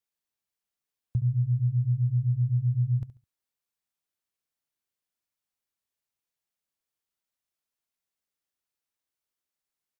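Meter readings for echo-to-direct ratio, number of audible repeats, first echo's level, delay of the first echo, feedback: -14.0 dB, 2, -14.5 dB, 70 ms, 27%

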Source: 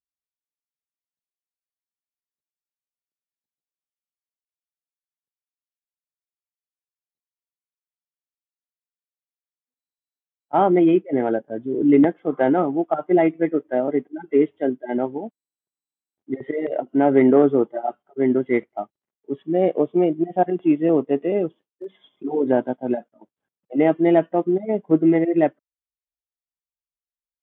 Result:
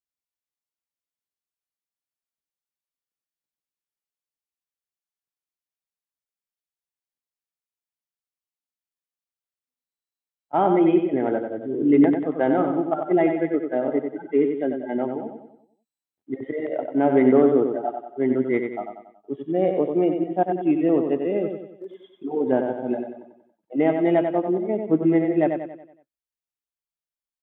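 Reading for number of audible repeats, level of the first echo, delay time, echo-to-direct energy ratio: 5, -6.0 dB, 93 ms, -5.0 dB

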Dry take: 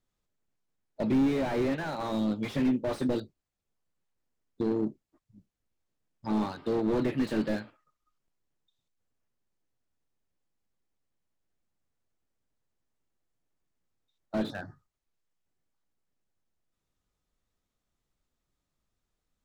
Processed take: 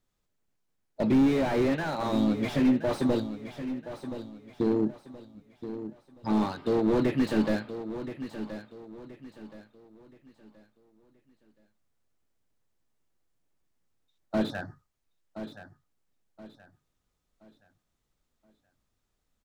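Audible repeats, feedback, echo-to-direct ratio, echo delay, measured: 3, 34%, -11.0 dB, 1.024 s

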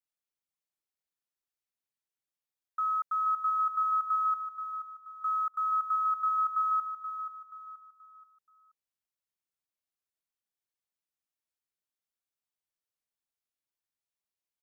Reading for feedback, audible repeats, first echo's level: 37%, 4, -9.0 dB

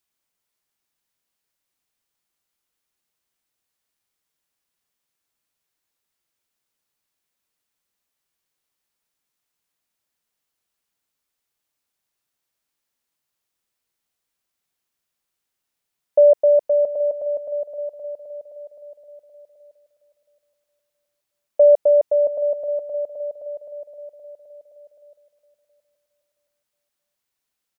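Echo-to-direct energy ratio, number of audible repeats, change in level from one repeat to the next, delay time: -16.5 dB, 2, -10.5 dB, 0.672 s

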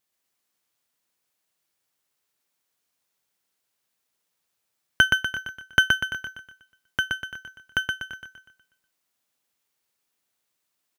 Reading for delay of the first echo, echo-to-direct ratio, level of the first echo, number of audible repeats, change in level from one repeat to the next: 0.122 s, -2.5 dB, -3.5 dB, 5, -7.0 dB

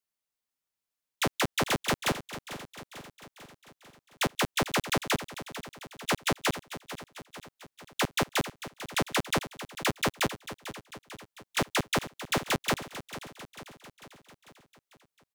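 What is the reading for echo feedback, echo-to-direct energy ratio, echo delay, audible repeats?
57%, -11.5 dB, 0.446 s, 5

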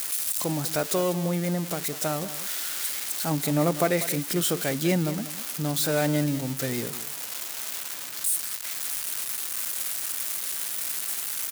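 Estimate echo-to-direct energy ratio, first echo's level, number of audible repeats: -14.0 dB, -14.0 dB, 1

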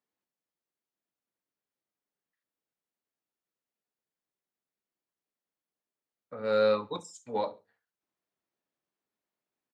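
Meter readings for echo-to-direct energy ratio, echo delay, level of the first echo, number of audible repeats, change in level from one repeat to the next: -21.5 dB, 69 ms, -22.0 dB, 2, -11.5 dB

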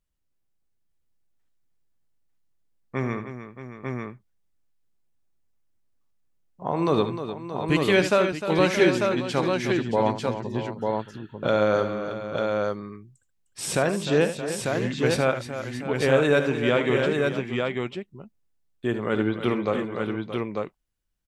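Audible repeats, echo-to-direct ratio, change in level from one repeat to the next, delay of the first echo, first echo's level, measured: 4, -2.0 dB, no steady repeat, 75 ms, -11.0 dB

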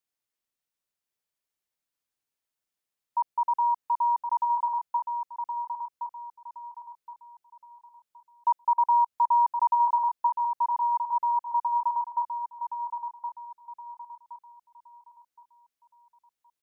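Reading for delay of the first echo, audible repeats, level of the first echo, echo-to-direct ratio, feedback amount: 1.069 s, 3, -7.0 dB, -6.5 dB, 34%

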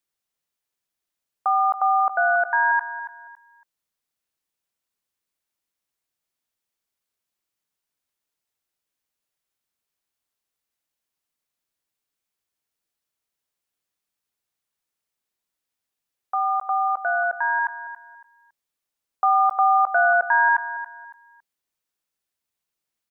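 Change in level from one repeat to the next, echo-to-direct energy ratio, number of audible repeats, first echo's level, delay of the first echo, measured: -11.5 dB, -12.5 dB, 2, -13.0 dB, 0.279 s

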